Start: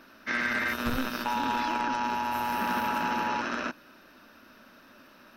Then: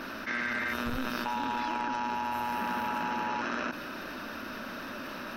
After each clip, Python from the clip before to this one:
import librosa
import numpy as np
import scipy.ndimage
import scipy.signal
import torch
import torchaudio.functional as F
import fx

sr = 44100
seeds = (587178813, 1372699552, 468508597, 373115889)

y = fx.high_shelf(x, sr, hz=5400.0, db=-5.0)
y = fx.env_flatten(y, sr, amount_pct=70)
y = y * 10.0 ** (-5.0 / 20.0)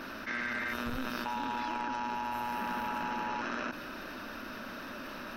y = fx.dmg_noise_colour(x, sr, seeds[0], colour='brown', level_db=-57.0)
y = y * 10.0 ** (-3.0 / 20.0)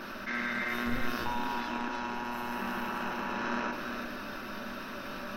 y = x + 10.0 ** (-6.0 / 20.0) * np.pad(x, (int(336 * sr / 1000.0), 0))[:len(x)]
y = fx.room_shoebox(y, sr, seeds[1], volume_m3=310.0, walls='furnished', distance_m=1.1)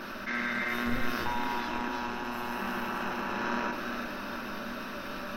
y = x + 10.0 ** (-12.5 / 20.0) * np.pad(x, (int(814 * sr / 1000.0), 0))[:len(x)]
y = y * 10.0 ** (1.5 / 20.0)